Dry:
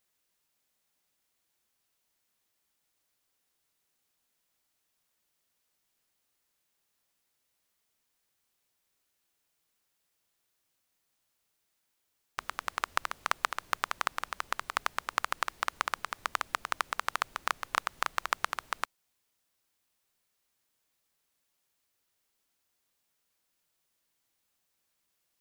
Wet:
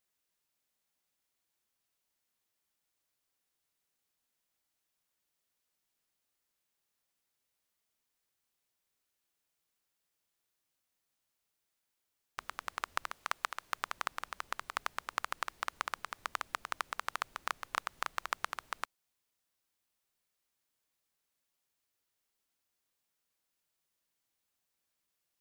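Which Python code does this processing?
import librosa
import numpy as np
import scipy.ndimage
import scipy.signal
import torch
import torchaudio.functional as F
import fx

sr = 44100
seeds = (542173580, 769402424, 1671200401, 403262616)

y = fx.low_shelf(x, sr, hz=370.0, db=-6.5, at=(13.12, 13.77))
y = y * 10.0 ** (-5.5 / 20.0)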